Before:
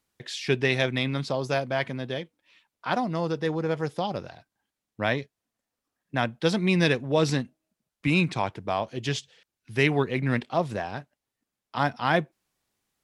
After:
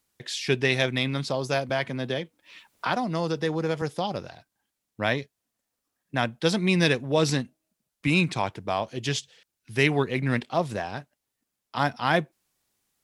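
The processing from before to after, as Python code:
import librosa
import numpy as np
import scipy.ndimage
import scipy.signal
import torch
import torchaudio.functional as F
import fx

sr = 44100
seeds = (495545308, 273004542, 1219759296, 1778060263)

y = fx.high_shelf(x, sr, hz=5000.0, db=7.0)
y = fx.band_squash(y, sr, depth_pct=70, at=(1.69, 3.82))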